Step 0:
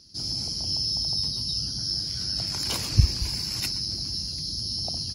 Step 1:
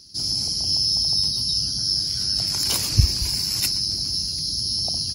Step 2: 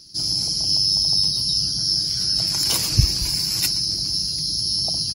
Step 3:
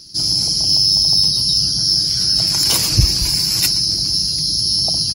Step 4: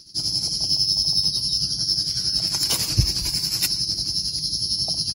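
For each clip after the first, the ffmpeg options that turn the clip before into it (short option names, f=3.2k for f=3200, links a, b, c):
-af "highshelf=f=6.4k:g=12,volume=1.5dB"
-af "aecho=1:1:6.2:0.39,volume=1dB"
-af "acontrast=80,volume=-1dB"
-af "tremolo=f=11:d=0.58,volume=-4.5dB"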